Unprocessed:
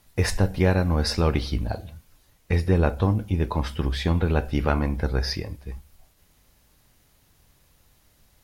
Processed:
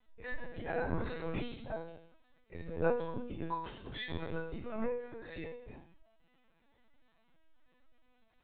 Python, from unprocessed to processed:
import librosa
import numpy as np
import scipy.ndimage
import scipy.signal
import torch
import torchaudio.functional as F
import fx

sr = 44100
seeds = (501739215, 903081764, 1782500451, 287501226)

y = fx.lowpass(x, sr, hz=2700.0, slope=6)
y = fx.low_shelf(y, sr, hz=210.0, db=-5.0)
y = fx.auto_swell(y, sr, attack_ms=177.0)
y = fx.resonator_bank(y, sr, root=52, chord='sus4', decay_s=0.72)
y = fx.lpc_vocoder(y, sr, seeds[0], excitation='pitch_kept', order=16)
y = F.gain(torch.from_numpy(y), 15.0).numpy()